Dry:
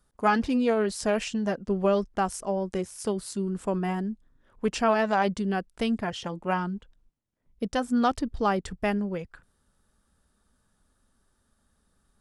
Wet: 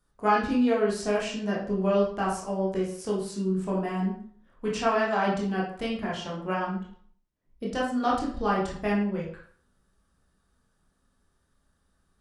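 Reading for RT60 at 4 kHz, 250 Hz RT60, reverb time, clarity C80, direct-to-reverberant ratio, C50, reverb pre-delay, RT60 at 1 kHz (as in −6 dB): 0.40 s, 0.50 s, 0.55 s, 8.5 dB, −4.5 dB, 4.0 dB, 16 ms, 0.55 s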